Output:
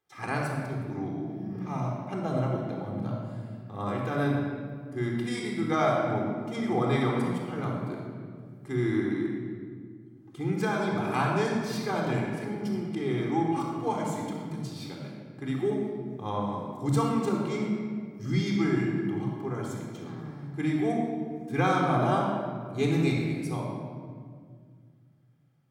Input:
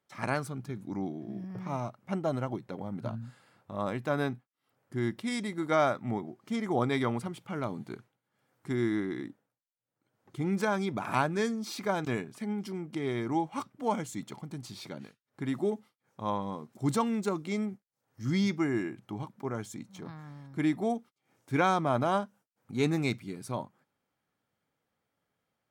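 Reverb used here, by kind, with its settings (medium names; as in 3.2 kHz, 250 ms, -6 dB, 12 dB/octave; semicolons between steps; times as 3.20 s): simulated room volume 3100 m³, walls mixed, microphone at 3.8 m; trim -3.5 dB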